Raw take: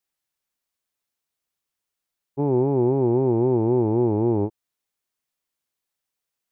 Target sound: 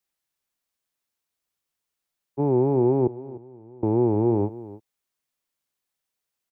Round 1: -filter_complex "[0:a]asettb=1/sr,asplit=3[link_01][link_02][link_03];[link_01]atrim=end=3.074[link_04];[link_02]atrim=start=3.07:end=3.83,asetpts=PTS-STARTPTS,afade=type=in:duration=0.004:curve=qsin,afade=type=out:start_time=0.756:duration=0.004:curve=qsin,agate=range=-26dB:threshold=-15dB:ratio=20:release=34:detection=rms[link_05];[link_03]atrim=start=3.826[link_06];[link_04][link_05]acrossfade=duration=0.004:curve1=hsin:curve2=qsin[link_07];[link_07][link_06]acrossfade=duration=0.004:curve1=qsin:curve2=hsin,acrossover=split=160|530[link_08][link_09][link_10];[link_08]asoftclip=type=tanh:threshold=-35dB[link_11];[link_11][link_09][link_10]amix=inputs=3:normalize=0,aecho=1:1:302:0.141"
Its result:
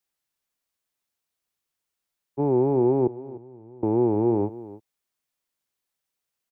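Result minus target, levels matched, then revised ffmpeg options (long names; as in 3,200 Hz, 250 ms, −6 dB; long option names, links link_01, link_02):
soft clipping: distortion +13 dB
-filter_complex "[0:a]asettb=1/sr,asplit=3[link_01][link_02][link_03];[link_01]atrim=end=3.074[link_04];[link_02]atrim=start=3.07:end=3.83,asetpts=PTS-STARTPTS,afade=type=in:duration=0.004:curve=qsin,afade=type=out:start_time=0.756:duration=0.004:curve=qsin,agate=range=-26dB:threshold=-15dB:ratio=20:release=34:detection=rms[link_05];[link_03]atrim=start=3.826[link_06];[link_04][link_05]acrossfade=duration=0.004:curve1=hsin:curve2=qsin[link_07];[link_07][link_06]acrossfade=duration=0.004:curve1=qsin:curve2=hsin,acrossover=split=160|530[link_08][link_09][link_10];[link_08]asoftclip=type=tanh:threshold=-24.5dB[link_11];[link_11][link_09][link_10]amix=inputs=3:normalize=0,aecho=1:1:302:0.141"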